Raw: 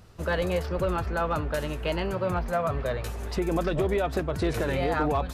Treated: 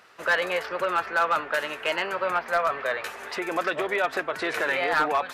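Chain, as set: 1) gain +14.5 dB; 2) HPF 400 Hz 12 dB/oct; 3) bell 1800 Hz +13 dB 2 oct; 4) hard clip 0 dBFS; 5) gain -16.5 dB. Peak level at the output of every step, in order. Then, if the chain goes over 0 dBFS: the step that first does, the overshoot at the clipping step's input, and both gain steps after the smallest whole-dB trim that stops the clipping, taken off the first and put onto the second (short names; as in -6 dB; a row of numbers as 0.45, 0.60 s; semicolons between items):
-3.5, -2.5, +7.0, 0.0, -16.5 dBFS; step 3, 7.0 dB; step 1 +7.5 dB, step 5 -9.5 dB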